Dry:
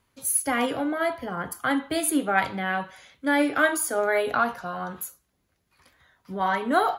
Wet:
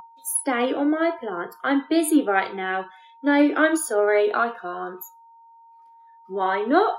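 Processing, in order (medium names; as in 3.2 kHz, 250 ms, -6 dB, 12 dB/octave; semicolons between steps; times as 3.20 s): resonant high-pass 340 Hz, resonance Q 3.4; whistle 920 Hz -27 dBFS; spectral noise reduction 21 dB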